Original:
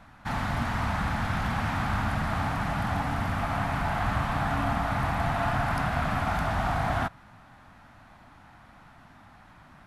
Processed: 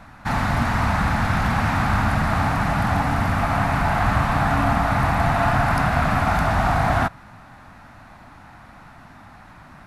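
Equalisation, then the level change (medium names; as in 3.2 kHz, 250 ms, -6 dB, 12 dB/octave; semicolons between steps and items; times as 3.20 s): peaking EQ 3.2 kHz -5 dB 0.24 oct; +8.0 dB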